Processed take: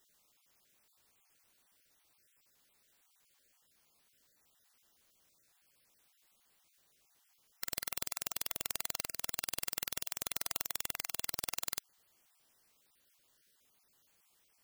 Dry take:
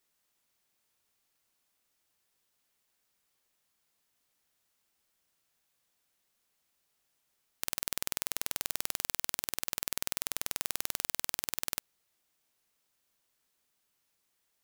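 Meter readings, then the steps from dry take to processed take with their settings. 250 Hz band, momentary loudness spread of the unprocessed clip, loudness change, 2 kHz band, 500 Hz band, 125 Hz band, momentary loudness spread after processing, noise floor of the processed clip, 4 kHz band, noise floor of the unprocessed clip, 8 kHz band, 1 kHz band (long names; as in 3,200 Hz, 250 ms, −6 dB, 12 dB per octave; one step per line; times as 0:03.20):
−3.5 dB, 2 LU, −3.0 dB, −3.0 dB, −3.5 dB, −3.5 dB, 2 LU, −73 dBFS, −3.0 dB, −78 dBFS, −3.0 dB, −3.0 dB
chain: time-frequency cells dropped at random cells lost 27%
in parallel at +2 dB: brickwall limiter −13 dBFS, peak gain reduction 8 dB
on the sum: gain into a clipping stage and back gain 19.5 dB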